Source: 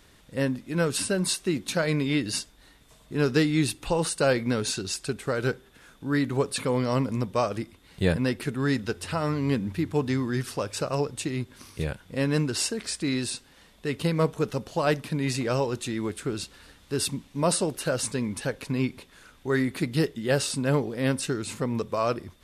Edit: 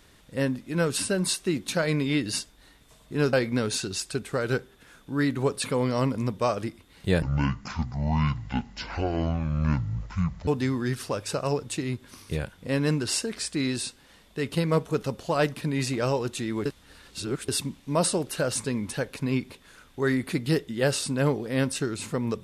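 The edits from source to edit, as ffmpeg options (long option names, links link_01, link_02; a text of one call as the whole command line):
ffmpeg -i in.wav -filter_complex "[0:a]asplit=6[link_01][link_02][link_03][link_04][link_05][link_06];[link_01]atrim=end=3.332[link_07];[link_02]atrim=start=4.268:end=8.164[link_08];[link_03]atrim=start=8.16:end=9.95,asetpts=PTS-STARTPTS,asetrate=24255,aresample=44100,atrim=end_sample=143525,asetpts=PTS-STARTPTS[link_09];[link_04]atrim=start=9.946:end=16.132[link_10];[link_05]atrim=start=16.128:end=16.962,asetpts=PTS-STARTPTS,areverse[link_11];[link_06]atrim=start=16.958[link_12];[link_07][link_08]acrossfade=duration=0.004:curve1=hsin:curve2=hsin[link_13];[link_13][link_09]acrossfade=duration=0.004:curve1=hsin:curve2=hsin[link_14];[link_14][link_10]acrossfade=duration=0.004:curve1=hsin:curve2=hsin[link_15];[link_15][link_11]acrossfade=duration=0.004:curve1=hsin:curve2=hsin[link_16];[link_16][link_12]acrossfade=duration=0.004:curve1=hsin:curve2=hsin" out.wav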